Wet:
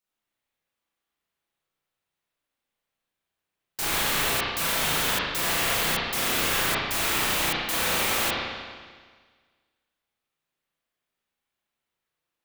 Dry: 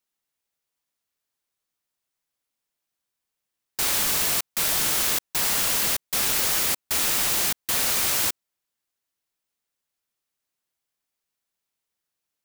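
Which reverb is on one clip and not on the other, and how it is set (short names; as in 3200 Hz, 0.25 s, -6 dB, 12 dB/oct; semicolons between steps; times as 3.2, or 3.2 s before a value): spring tank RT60 1.6 s, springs 32/38 ms, chirp 25 ms, DRR -9 dB; gain -5.5 dB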